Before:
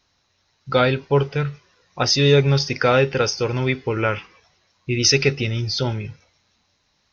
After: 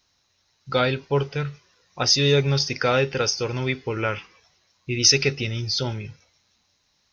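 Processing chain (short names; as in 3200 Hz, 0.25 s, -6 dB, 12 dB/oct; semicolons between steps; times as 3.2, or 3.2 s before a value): high shelf 4700 Hz +9.5 dB; gain -4.5 dB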